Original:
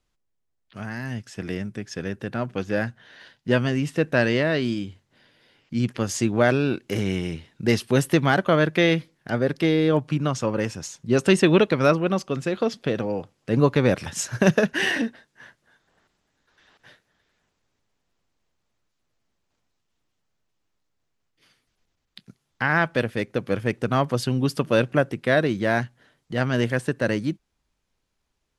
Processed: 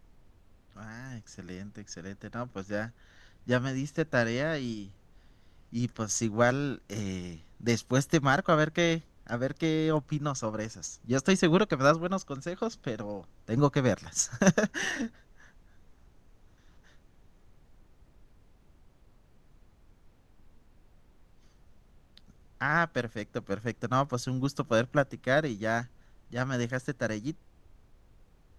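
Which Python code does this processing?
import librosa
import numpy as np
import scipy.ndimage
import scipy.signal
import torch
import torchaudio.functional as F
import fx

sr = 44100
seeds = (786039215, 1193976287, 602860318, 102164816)

y = fx.graphic_eq_31(x, sr, hz=(400, 1250, 2500, 6300, 10000), db=(-6, 5, -7, 11, -4))
y = fx.dmg_noise_colour(y, sr, seeds[0], colour='brown', level_db=-45.0)
y = fx.upward_expand(y, sr, threshold_db=-30.0, expansion=1.5)
y = F.gain(torch.from_numpy(y), -3.0).numpy()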